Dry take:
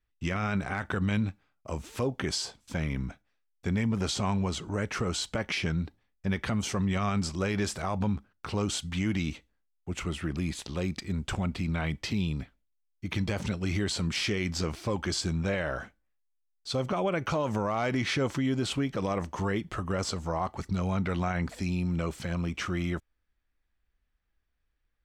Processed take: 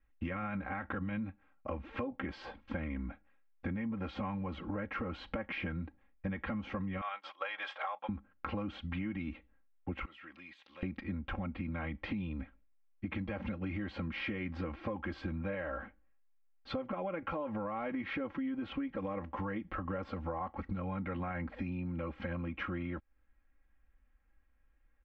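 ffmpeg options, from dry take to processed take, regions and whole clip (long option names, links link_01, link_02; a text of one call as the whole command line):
ffmpeg -i in.wav -filter_complex "[0:a]asettb=1/sr,asplit=3[link_01][link_02][link_03];[link_01]atrim=end=7.014[link_04];[link_02]atrim=start=7.01:end=8.09,asetpts=PTS-STARTPTS,afade=type=in:duration=0.004:curve=qsin,afade=type=out:start_time=1.076:duration=0.004:curve=qsin,highpass=frequency=660:width=0.5412,highpass=frequency=660:width=1.3066,agate=range=-33dB:threshold=-39dB:ratio=3:release=100:detection=peak,equalizer=frequency=3300:width_type=o:width=0.28:gain=12.5[link_05];[link_03]atrim=start=8.086[link_06];[link_04][link_05]acrossfade=duration=0.004:curve1=hsin:curve2=qsin[link_07];[link_07][link_06]acrossfade=duration=0.004:curve1=qsin:curve2=hsin,asettb=1/sr,asplit=3[link_08][link_09][link_10];[link_08]atrim=end=10.054[link_11];[link_09]atrim=start=10.05:end=10.83,asetpts=PTS-STARTPTS,afade=type=in:duration=0.004:curve=qsin,afade=type=out:start_time=0.776:duration=0.004:curve=qsin,aderivative,acompressor=threshold=-53dB:ratio=1.5:attack=3.2:release=140:knee=1:detection=peak[link_12];[link_10]atrim=start=10.826[link_13];[link_11][link_12]acrossfade=duration=0.004:curve1=hsin:curve2=qsin[link_14];[link_14][link_13]acrossfade=duration=0.004:curve1=qsin:curve2=hsin,lowpass=frequency=2400:width=0.5412,lowpass=frequency=2400:width=1.3066,aecho=1:1:3.7:0.98,acompressor=threshold=-39dB:ratio=6,volume=3dB" out.wav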